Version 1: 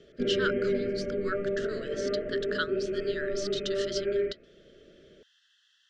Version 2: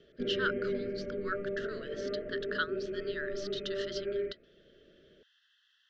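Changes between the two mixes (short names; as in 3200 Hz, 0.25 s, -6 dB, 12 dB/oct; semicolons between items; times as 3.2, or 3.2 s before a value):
background -5.5 dB; master: add air absorption 160 m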